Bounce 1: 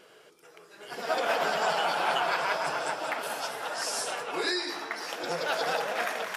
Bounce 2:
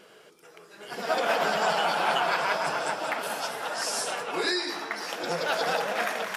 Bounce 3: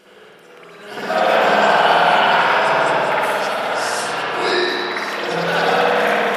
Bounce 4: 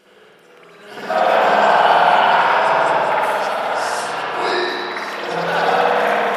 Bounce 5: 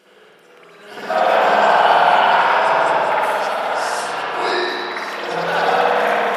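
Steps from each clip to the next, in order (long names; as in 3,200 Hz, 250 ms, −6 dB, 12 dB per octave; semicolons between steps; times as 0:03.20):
parametric band 200 Hz +6 dB 0.43 octaves; level +2 dB
spring reverb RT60 1.8 s, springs 53 ms, chirp 20 ms, DRR −8.5 dB; level +2.5 dB
dynamic equaliser 870 Hz, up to +6 dB, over −27 dBFS, Q 1.1; level −3.5 dB
high-pass filter 150 Hz 6 dB per octave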